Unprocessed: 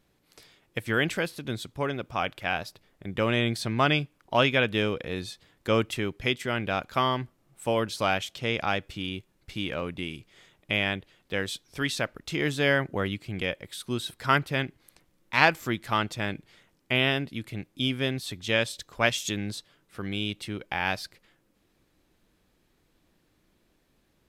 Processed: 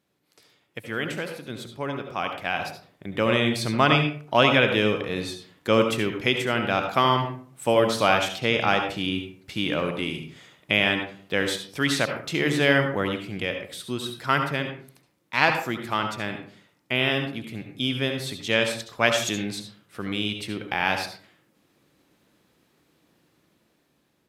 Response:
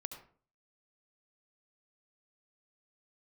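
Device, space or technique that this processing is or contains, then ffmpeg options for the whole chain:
far laptop microphone: -filter_complex "[1:a]atrim=start_sample=2205[s0];[0:a][s0]afir=irnorm=-1:irlink=0,highpass=120,dynaudnorm=f=970:g=5:m=3.76,volume=0.891"

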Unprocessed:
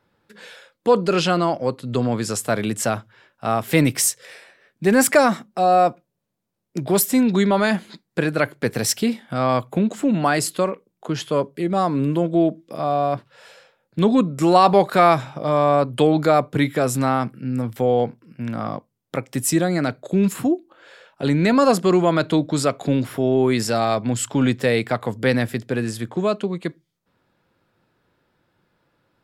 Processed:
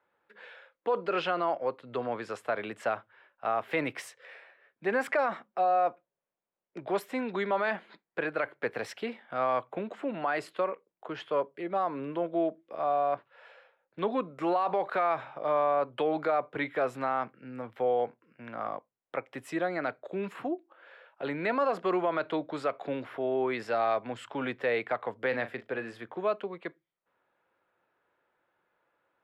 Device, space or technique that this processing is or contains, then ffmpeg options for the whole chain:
DJ mixer with the lows and highs turned down: -filter_complex "[0:a]bass=f=250:g=-1,treble=f=4000:g=-10,asettb=1/sr,asplit=3[s0][s1][s2];[s0]atrim=end=25.284[s3];[s1]atrim=start=25.28:end=26.05,asetpts=PTS-STARTPTS,afade=t=in:d=0.004:c=qsin,afade=t=out:st=0.766:d=0.004:c=qsin,asplit=2[s4][s5];[s5]adelay=39,volume=0.251[s6];[s4][s6]amix=inputs=2:normalize=0,atrim=end_sample=33957[s7];[s2]atrim=start=26.046[s8];[s3][s7]acrossfade=d=0.004:c1=hsin:c2=qsin[s9];[s9][s8]acrossfade=d=0.004:c1=qsin:c2=hsin,acrossover=split=410 3400:gain=0.126 1 0.141[s10][s11][s12];[s10][s11][s12]amix=inputs=3:normalize=0,alimiter=limit=0.2:level=0:latency=1:release=55,volume=0.562"

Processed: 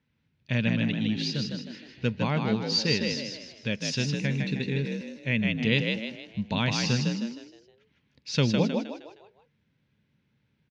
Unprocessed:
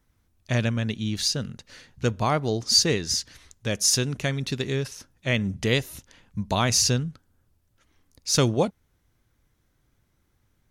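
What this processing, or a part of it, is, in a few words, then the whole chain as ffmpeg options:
frequency-shifting delay pedal into a guitar cabinet: -filter_complex "[0:a]asplit=6[s0][s1][s2][s3][s4][s5];[s1]adelay=156,afreqshift=54,volume=0.631[s6];[s2]adelay=312,afreqshift=108,volume=0.272[s7];[s3]adelay=468,afreqshift=162,volume=0.116[s8];[s4]adelay=624,afreqshift=216,volume=0.0501[s9];[s5]adelay=780,afreqshift=270,volume=0.0216[s10];[s0][s6][s7][s8][s9][s10]amix=inputs=6:normalize=0,highpass=110,equalizer=f=140:t=q:w=4:g=4,equalizer=f=220:t=q:w=4:g=5,equalizer=f=350:t=q:w=4:g=-6,equalizer=f=710:t=q:w=4:g=-9,equalizer=f=1200:t=q:w=4:g=-9,equalizer=f=2600:t=q:w=4:g=6,lowpass=f=4400:w=0.5412,lowpass=f=4400:w=1.3066,asettb=1/sr,asplit=3[s11][s12][s13];[s11]atrim=end=4.154[s14];[s12]atrim=start=4.15:end=5.43,asetpts=PTS-STARTPTS,afade=t=in:d=0.004:c=qsin,afade=t=out:st=1.276:d=0.004:c=qsin,equalizer=f=630:t=o:w=0.33:g=-4,equalizer=f=1250:t=o:w=0.33:g=-8,equalizer=f=3150:t=o:w=0.33:g=-8,equalizer=f=5000:t=o:w=0.33:g=-7,equalizer=f=10000:t=o:w=0.33:g=5[s15];[s13]atrim=start=5.426[s16];[s14][s15]acrossfade=d=0.004:c1=hsin:c2=qsin[s17];[s17][s16]acrossfade=d=0.004:c1=qsin:c2=hsin,volume=0.708"

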